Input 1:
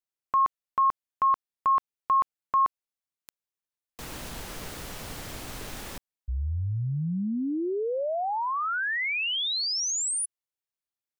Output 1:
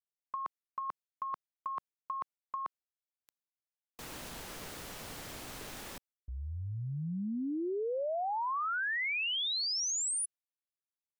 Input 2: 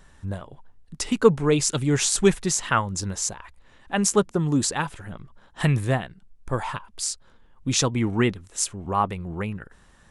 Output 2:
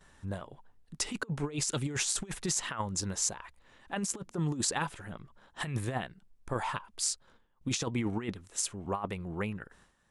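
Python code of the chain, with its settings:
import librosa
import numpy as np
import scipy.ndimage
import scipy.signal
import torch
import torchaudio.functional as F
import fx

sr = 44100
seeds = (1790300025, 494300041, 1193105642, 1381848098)

y = fx.gate_hold(x, sr, open_db=-44.0, close_db=-47.0, hold_ms=64.0, range_db=-11, attack_ms=2.7, release_ms=124.0)
y = fx.low_shelf(y, sr, hz=120.0, db=-7.5)
y = fx.over_compress(y, sr, threshold_db=-25.0, ratio=-0.5)
y = y * 10.0 ** (-6.5 / 20.0)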